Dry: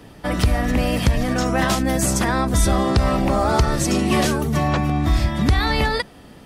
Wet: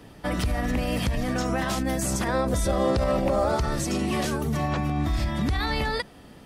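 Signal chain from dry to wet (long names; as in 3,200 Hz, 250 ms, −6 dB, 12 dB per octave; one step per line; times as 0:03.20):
brickwall limiter −13.5 dBFS, peak gain reduction 7 dB
0:02.27–0:03.56: parametric band 540 Hz +11 dB 0.34 octaves
level −4 dB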